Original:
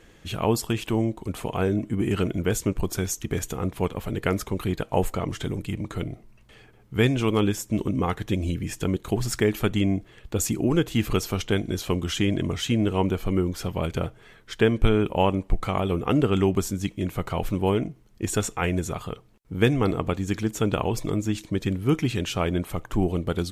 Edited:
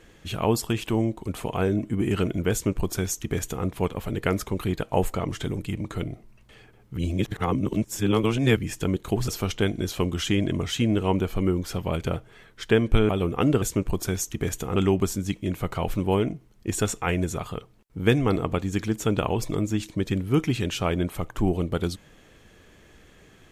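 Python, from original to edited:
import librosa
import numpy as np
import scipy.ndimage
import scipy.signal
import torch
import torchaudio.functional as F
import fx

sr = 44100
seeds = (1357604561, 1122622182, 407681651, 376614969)

y = fx.edit(x, sr, fx.duplicate(start_s=2.52, length_s=1.14, to_s=16.31),
    fx.reverse_span(start_s=6.97, length_s=1.6),
    fx.cut(start_s=9.28, length_s=1.9),
    fx.cut(start_s=14.99, length_s=0.79), tone=tone)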